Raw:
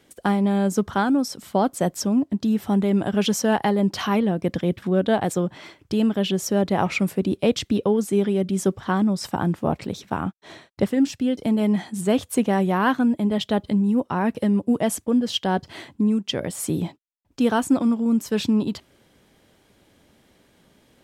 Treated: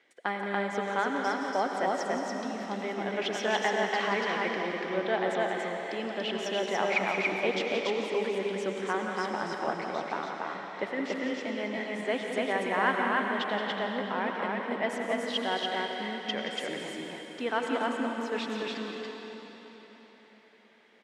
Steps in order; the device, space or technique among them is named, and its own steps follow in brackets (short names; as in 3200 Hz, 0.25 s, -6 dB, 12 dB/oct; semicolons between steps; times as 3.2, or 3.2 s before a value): station announcement (BPF 440–4300 Hz; bell 2000 Hz +10 dB 0.5 oct; loudspeakers at several distances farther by 60 m -9 dB, 98 m -2 dB; reverb RT60 4.4 s, pre-delay 80 ms, DRR 2.5 dB); gain -7.5 dB